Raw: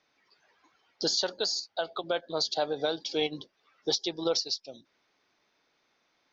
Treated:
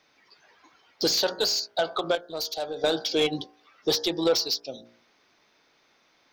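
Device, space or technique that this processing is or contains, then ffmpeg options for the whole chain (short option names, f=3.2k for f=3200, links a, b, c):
saturation between pre-emphasis and de-emphasis: -filter_complex "[0:a]highshelf=f=2.3k:g=9,bandreject=f=58.61:t=h:w=4,bandreject=f=117.22:t=h:w=4,bandreject=f=175.83:t=h:w=4,bandreject=f=234.44:t=h:w=4,bandreject=f=293.05:t=h:w=4,bandreject=f=351.66:t=h:w=4,bandreject=f=410.27:t=h:w=4,bandreject=f=468.88:t=h:w=4,bandreject=f=527.49:t=h:w=4,bandreject=f=586.1:t=h:w=4,bandreject=f=644.71:t=h:w=4,bandreject=f=703.32:t=h:w=4,bandreject=f=761.93:t=h:w=4,bandreject=f=820.54:t=h:w=4,bandreject=f=879.15:t=h:w=4,bandreject=f=937.76:t=h:w=4,bandreject=f=996.37:t=h:w=4,bandreject=f=1.05498k:t=h:w=4,bandreject=f=1.11359k:t=h:w=4,bandreject=f=1.1722k:t=h:w=4,bandreject=f=1.23081k:t=h:w=4,bandreject=f=1.28942k:t=h:w=4,bandreject=f=1.34803k:t=h:w=4,bandreject=f=1.40664k:t=h:w=4,bandreject=f=1.46525k:t=h:w=4,bandreject=f=1.52386k:t=h:w=4,bandreject=f=1.58247k:t=h:w=4,bandreject=f=1.64108k:t=h:w=4,bandreject=f=1.69969k:t=h:w=4,bandreject=f=1.7583k:t=h:w=4,bandreject=f=1.81691k:t=h:w=4,bandreject=f=1.87552k:t=h:w=4,asoftclip=type=tanh:threshold=-22dB,highshelf=f=2.3k:g=-9,asettb=1/sr,asplit=3[a][b][c];[a]atrim=end=2.154[d];[b]atrim=start=2.15:end=2.84,asetpts=PTS-STARTPTS,afade=t=in:d=0.004:c=qsin,afade=t=out:st=0.686:d=0.004:c=qsin,equalizer=f=125:t=o:w=1:g=-11,equalizer=f=250:t=o:w=1:g=-8,equalizer=f=500:t=o:w=1:g=-4,equalizer=f=1k:t=o:w=1:g=-9,equalizer=f=2k:t=o:w=1:g=-8,equalizer=f=4k:t=o:w=1:g=-5[e];[c]atrim=start=2.836[f];[d][e]acrossfade=d=0.004:c1=hsin:c2=qsin[g];[g][f]acrossfade=d=0.004:c1=qsin:c2=hsin,volume=8.5dB"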